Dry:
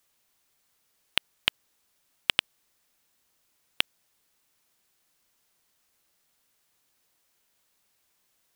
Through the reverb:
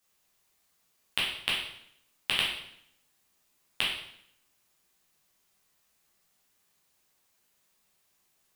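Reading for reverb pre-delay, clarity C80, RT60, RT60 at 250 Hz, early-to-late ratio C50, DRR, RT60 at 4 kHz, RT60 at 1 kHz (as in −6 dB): 8 ms, 6.5 dB, 0.70 s, 0.85 s, 2.5 dB, −6.0 dB, 0.65 s, 0.70 s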